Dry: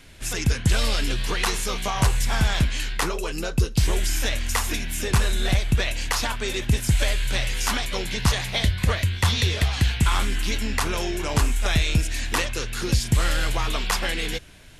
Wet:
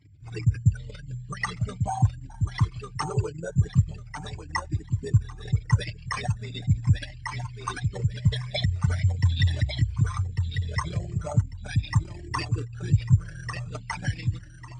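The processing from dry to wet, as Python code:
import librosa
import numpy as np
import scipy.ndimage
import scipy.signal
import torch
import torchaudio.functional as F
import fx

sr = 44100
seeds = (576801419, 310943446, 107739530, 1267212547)

p1 = fx.envelope_sharpen(x, sr, power=3.0)
p2 = scipy.signal.sosfilt(scipy.signal.butter(4, 76.0, 'highpass', fs=sr, output='sos'), p1)
p3 = fx.peak_eq(p2, sr, hz=100.0, db=8.5, octaves=0.83)
p4 = p3 + 0.51 * np.pad(p3, (int(6.7 * sr / 1000.0), 0))[:len(p3)]
p5 = p4 + fx.echo_feedback(p4, sr, ms=1147, feedback_pct=22, wet_db=-6, dry=0)
p6 = np.repeat(p5[::6], 6)[:len(p5)]
p7 = fx.brickwall_lowpass(p6, sr, high_hz=9200.0)
y = fx.comb_cascade(p7, sr, direction='rising', hz=0.41)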